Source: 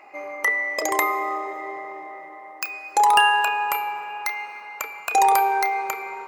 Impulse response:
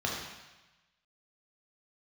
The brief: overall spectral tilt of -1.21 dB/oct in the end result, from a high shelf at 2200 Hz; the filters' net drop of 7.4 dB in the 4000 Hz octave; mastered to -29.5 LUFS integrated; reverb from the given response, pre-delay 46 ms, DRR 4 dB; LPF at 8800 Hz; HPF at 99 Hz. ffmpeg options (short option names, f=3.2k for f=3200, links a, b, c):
-filter_complex "[0:a]highpass=99,lowpass=8.8k,highshelf=f=2.2k:g=-7,equalizer=f=4k:t=o:g=-5.5,asplit=2[a][b];[1:a]atrim=start_sample=2205,adelay=46[c];[b][c]afir=irnorm=-1:irlink=0,volume=-12dB[d];[a][d]amix=inputs=2:normalize=0,volume=-6.5dB"